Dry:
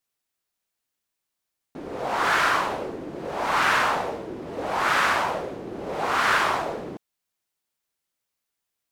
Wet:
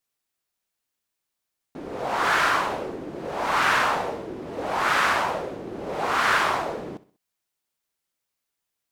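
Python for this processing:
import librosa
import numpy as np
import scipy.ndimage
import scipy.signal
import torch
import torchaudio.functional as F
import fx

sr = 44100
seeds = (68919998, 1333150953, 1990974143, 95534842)

y = fx.echo_feedback(x, sr, ms=65, feedback_pct=39, wet_db=-18)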